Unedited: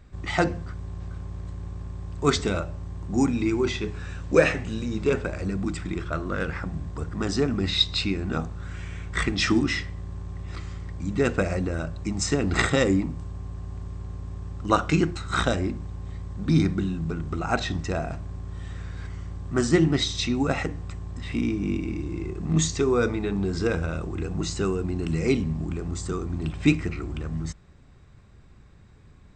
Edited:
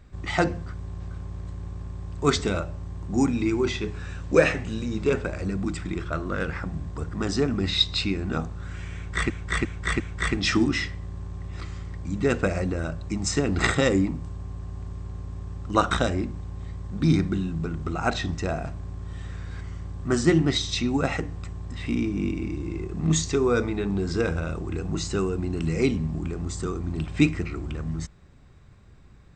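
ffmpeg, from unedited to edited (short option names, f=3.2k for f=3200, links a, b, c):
-filter_complex "[0:a]asplit=5[a][b][c][d][e];[a]atrim=end=9.302[f];[b]atrim=start=8.948:end=9.302[g];[c]atrim=start=8.948:end=9.302[h];[d]atrim=start=8.948:end=14.862[i];[e]atrim=start=15.368[j];[f][g]acrossfade=d=0.004:c1=hsin:c2=hsin[k];[k][h]acrossfade=d=0.004:c1=hsin:c2=hsin[l];[l][i]acrossfade=d=0.004:c1=hsin:c2=hsin[m];[m][j]acrossfade=d=0.004:c1=hsin:c2=hsin"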